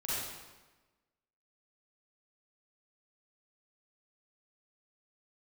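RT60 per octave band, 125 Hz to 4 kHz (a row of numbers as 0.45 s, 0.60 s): 1.2 s, 1.3 s, 1.2 s, 1.2 s, 1.1 s, 1.0 s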